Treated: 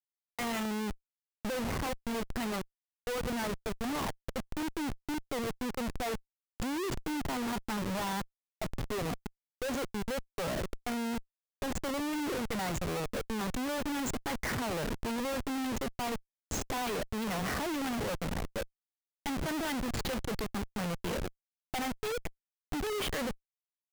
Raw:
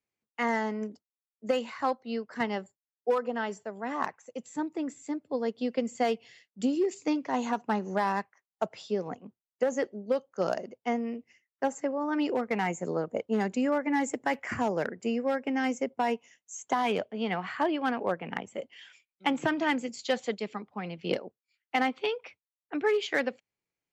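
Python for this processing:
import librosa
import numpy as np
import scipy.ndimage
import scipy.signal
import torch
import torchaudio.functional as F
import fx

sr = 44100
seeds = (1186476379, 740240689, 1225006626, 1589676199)

y = fx.schmitt(x, sr, flips_db=-38.5)
y = y * librosa.db_to_amplitude(-2.0)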